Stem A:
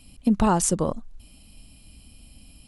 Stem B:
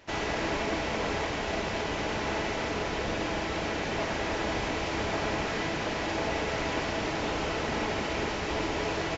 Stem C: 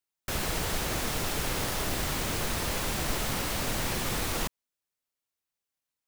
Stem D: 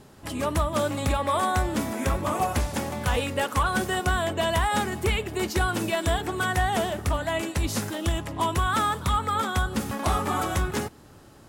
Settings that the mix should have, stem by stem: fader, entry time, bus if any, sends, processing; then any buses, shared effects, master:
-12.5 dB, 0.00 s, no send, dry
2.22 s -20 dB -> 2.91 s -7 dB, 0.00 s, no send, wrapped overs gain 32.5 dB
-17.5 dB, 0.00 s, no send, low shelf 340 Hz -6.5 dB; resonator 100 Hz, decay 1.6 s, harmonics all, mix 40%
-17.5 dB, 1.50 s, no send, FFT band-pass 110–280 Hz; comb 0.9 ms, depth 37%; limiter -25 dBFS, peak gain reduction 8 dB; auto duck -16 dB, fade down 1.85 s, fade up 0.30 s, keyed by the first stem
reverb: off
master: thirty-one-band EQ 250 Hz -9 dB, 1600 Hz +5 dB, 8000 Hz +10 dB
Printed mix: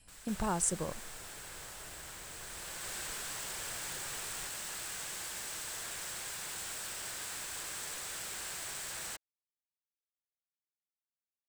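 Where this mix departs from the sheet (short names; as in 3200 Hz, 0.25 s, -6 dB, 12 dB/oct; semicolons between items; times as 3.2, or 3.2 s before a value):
stem C: missing resonator 100 Hz, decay 1.6 s, harmonics all, mix 40%; stem D: muted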